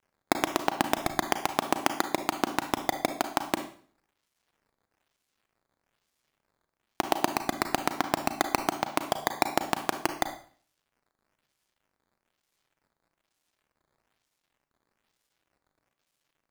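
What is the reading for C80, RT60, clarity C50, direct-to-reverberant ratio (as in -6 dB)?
14.0 dB, 0.45 s, 10.0 dB, 7.5 dB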